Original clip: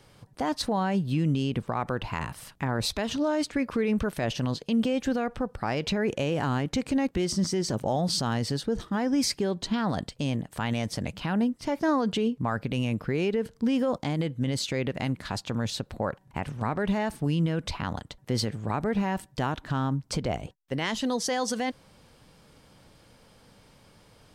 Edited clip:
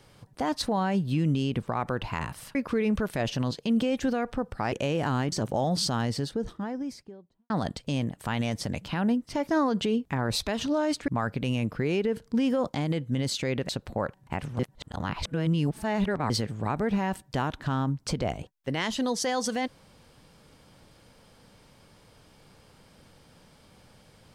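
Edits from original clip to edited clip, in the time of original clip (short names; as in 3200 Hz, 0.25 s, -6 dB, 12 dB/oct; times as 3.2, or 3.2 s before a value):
2.55–3.58 move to 12.37
5.75–6.09 cut
6.69–7.64 cut
8.21–9.82 studio fade out
14.98–15.73 cut
16.63–18.34 reverse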